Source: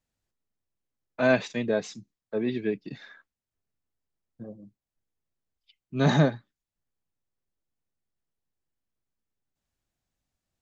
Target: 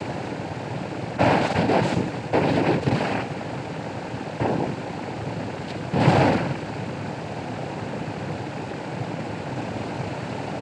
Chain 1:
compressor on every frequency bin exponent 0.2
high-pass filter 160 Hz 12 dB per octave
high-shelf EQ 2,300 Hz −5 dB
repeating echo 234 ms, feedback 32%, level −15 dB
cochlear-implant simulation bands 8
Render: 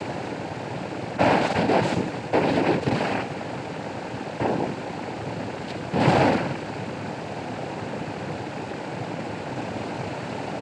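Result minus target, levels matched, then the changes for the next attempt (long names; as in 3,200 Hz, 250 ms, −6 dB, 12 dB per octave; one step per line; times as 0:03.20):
125 Hz band −3.0 dB
remove: high-pass filter 160 Hz 12 dB per octave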